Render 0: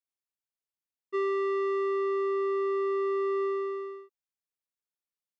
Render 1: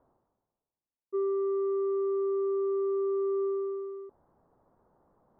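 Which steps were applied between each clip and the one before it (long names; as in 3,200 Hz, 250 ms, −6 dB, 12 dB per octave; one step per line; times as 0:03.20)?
inverse Chebyshev low-pass filter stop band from 2,500 Hz, stop band 50 dB
reversed playback
upward compression, threshold −37 dBFS
reversed playback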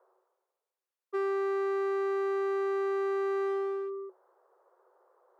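asymmetric clip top −35.5 dBFS, bottom −28 dBFS
Chebyshev high-pass with heavy ripple 360 Hz, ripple 6 dB
level +6.5 dB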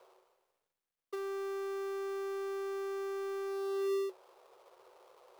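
gap after every zero crossing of 0.15 ms
compressor whose output falls as the input rises −37 dBFS, ratio −1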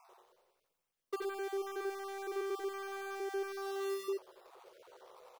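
time-frequency cells dropped at random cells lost 30%
single-tap delay 88 ms −3 dB
level +3 dB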